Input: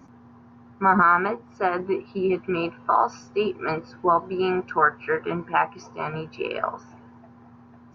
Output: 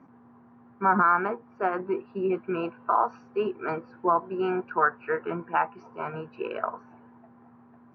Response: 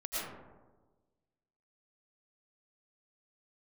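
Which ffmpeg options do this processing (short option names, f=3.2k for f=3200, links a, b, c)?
-af "aeval=exprs='0.447*(cos(1*acos(clip(val(0)/0.447,-1,1)))-cos(1*PI/2))+0.00282*(cos(7*acos(clip(val(0)/0.447,-1,1)))-cos(7*PI/2))':c=same,highpass=160,lowpass=2k,volume=-3dB"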